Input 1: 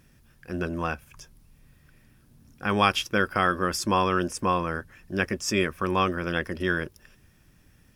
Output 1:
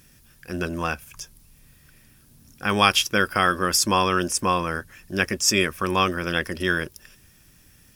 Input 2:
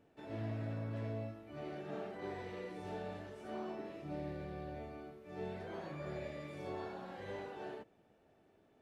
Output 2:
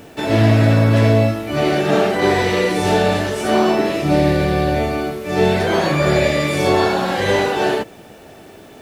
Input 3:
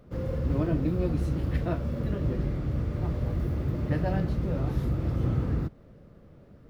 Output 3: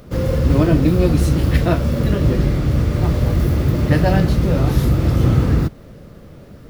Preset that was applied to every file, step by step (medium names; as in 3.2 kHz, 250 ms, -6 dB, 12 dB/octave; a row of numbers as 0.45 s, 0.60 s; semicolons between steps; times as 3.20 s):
treble shelf 3.1 kHz +11.5 dB; peak normalisation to -1.5 dBFS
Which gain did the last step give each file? +1.5 dB, +27.5 dB, +12.5 dB